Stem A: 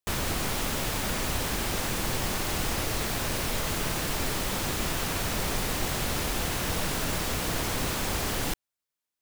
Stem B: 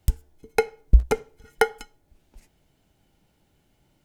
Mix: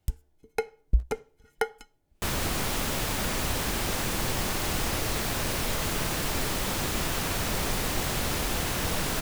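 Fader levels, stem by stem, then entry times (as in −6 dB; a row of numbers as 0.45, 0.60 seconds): +0.5, −8.0 decibels; 2.15, 0.00 seconds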